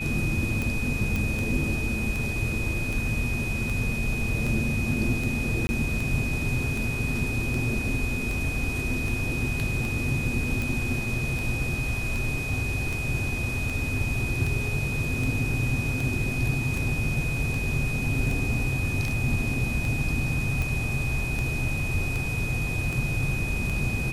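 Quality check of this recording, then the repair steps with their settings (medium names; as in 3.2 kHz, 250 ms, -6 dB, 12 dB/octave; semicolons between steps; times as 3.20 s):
tick 78 rpm
whine 2.5 kHz -31 dBFS
1.16 s: pop
5.67–5.69 s: dropout 20 ms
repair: de-click; band-stop 2.5 kHz, Q 30; interpolate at 5.67 s, 20 ms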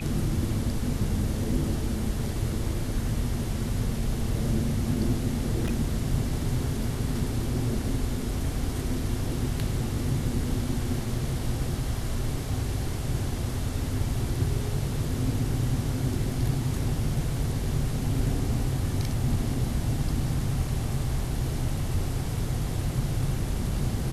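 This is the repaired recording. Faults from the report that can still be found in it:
nothing left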